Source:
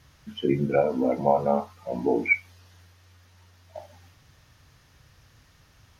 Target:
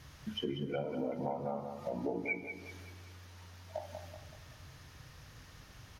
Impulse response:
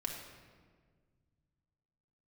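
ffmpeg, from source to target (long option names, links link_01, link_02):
-filter_complex "[0:a]acompressor=threshold=-38dB:ratio=6,asplit=2[link_01][link_02];[link_02]adelay=190,lowpass=frequency=3400:poles=1,volume=-7dB,asplit=2[link_03][link_04];[link_04]adelay=190,lowpass=frequency=3400:poles=1,volume=0.46,asplit=2[link_05][link_06];[link_06]adelay=190,lowpass=frequency=3400:poles=1,volume=0.46,asplit=2[link_07][link_08];[link_08]adelay=190,lowpass=frequency=3400:poles=1,volume=0.46,asplit=2[link_09][link_10];[link_10]adelay=190,lowpass=frequency=3400:poles=1,volume=0.46[link_11];[link_01][link_03][link_05][link_07][link_09][link_11]amix=inputs=6:normalize=0,asplit=2[link_12][link_13];[1:a]atrim=start_sample=2205,asetrate=26460,aresample=44100[link_14];[link_13][link_14]afir=irnorm=-1:irlink=0,volume=-16dB[link_15];[link_12][link_15]amix=inputs=2:normalize=0,volume=1dB"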